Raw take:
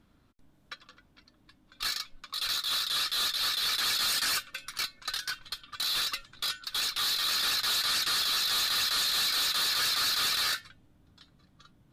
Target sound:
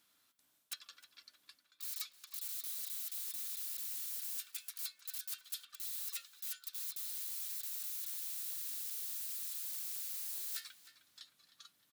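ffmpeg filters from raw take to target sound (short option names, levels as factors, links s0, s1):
-filter_complex "[0:a]aeval=exprs='(mod(37.6*val(0)+1,2)-1)/37.6':c=same,aderivative,areverse,acompressor=threshold=0.00398:ratio=6,areverse,asplit=2[s0][s1];[s1]adelay=309,lowpass=f=3800:p=1,volume=0.251,asplit=2[s2][s3];[s3]adelay=309,lowpass=f=3800:p=1,volume=0.53,asplit=2[s4][s5];[s5]adelay=309,lowpass=f=3800:p=1,volume=0.53,asplit=2[s6][s7];[s7]adelay=309,lowpass=f=3800:p=1,volume=0.53,asplit=2[s8][s9];[s9]adelay=309,lowpass=f=3800:p=1,volume=0.53,asplit=2[s10][s11];[s11]adelay=309,lowpass=f=3800:p=1,volume=0.53[s12];[s0][s2][s4][s6][s8][s10][s12]amix=inputs=7:normalize=0,volume=2.37"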